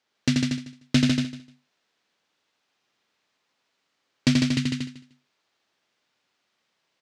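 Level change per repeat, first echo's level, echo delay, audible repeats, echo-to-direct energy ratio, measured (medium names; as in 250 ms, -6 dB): no regular repeats, -3.5 dB, 84 ms, 6, 0.0 dB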